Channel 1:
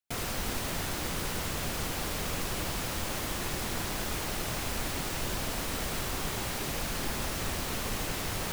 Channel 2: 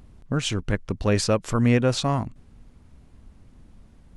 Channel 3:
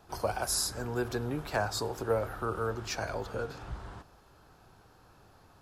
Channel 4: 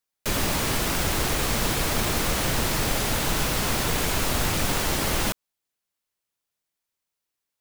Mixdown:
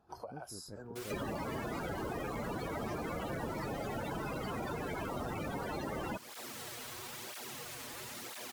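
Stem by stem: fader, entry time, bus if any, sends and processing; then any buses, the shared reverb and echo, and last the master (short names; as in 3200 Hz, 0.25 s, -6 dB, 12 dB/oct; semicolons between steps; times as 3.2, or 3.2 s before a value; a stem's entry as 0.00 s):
-16.5 dB, 0.85 s, no send, minimum comb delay 8.3 ms; sine folder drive 11 dB, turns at -21 dBFS; tape flanging out of phase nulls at 1 Hz, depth 6 ms
-19.5 dB, 0.00 s, no send, Chebyshev low-pass 570 Hz, order 2
-1.0 dB, 0.00 s, no send, compressor 12:1, threshold -40 dBFS, peak gain reduction 16.5 dB; spectral expander 1.5:1
+3.0 dB, 0.85 s, no send, loudest bins only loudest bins 32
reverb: off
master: HPF 220 Hz 6 dB/oct; compressor 3:1, threshold -39 dBFS, peak gain reduction 11 dB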